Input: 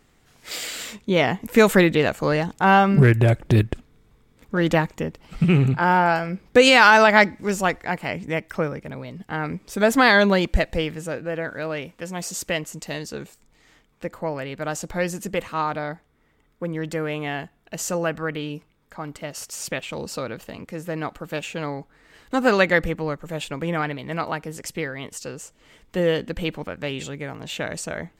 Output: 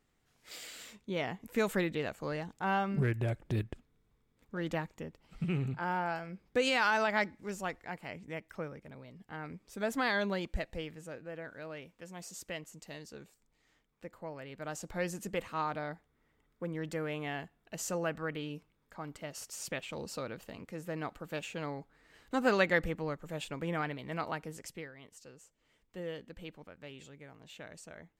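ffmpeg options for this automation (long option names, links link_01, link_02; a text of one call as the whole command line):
ffmpeg -i in.wav -af "volume=-10dB,afade=type=in:start_time=14.35:duration=0.77:silence=0.501187,afade=type=out:start_time=24.47:duration=0.45:silence=0.316228" out.wav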